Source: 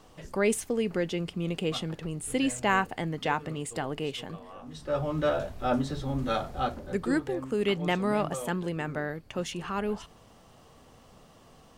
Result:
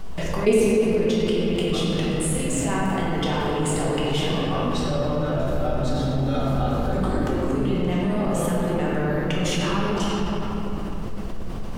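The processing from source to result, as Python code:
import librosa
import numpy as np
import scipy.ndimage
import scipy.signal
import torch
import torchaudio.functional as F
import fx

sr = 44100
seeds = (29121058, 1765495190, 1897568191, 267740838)

y = fx.dynamic_eq(x, sr, hz=1800.0, q=0.81, threshold_db=-41.0, ratio=4.0, max_db=-5)
y = fx.level_steps(y, sr, step_db=23)
y = fx.dmg_noise_colour(y, sr, seeds[0], colour='brown', level_db=-58.0)
y = fx.room_shoebox(y, sr, seeds[1], volume_m3=200.0, walls='hard', distance_m=1.1)
y = fx.env_flatten(y, sr, amount_pct=50)
y = y * librosa.db_to_amplitude(6.0)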